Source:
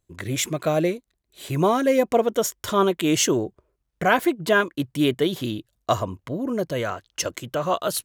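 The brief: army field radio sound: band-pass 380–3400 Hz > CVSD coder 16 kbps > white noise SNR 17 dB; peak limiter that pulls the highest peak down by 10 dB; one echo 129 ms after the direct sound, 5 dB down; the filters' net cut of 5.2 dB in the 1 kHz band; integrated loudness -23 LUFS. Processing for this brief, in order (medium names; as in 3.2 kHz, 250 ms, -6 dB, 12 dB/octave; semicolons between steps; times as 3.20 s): peaking EQ 1 kHz -7 dB; peak limiter -17.5 dBFS; band-pass 380–3400 Hz; delay 129 ms -5 dB; CVSD coder 16 kbps; white noise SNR 17 dB; trim +8.5 dB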